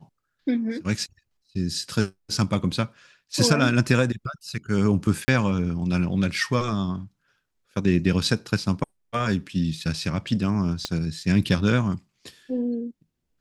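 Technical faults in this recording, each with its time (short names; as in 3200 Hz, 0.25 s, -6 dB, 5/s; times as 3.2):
5.25–5.28 gap 30 ms
10.85 pop -12 dBFS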